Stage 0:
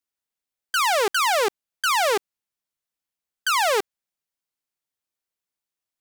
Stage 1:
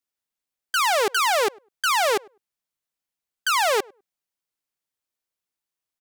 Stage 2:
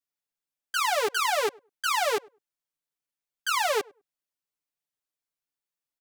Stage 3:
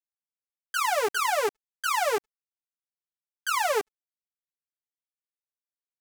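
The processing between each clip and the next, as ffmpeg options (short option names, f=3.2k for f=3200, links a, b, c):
-filter_complex "[0:a]asplit=2[a][b];[b]adelay=101,lowpass=f=1.1k:p=1,volume=-24dB,asplit=2[c][d];[d]adelay=101,lowpass=f=1.1k:p=1,volume=0.17[e];[a][c][e]amix=inputs=3:normalize=0"
-af "aecho=1:1:6.9:1,volume=-8dB"
-af "aeval=exprs='sgn(val(0))*max(abs(val(0))-0.00631,0)':c=same,equalizer=f=3.7k:t=o:w=1:g=-5.5,volume=1.5dB"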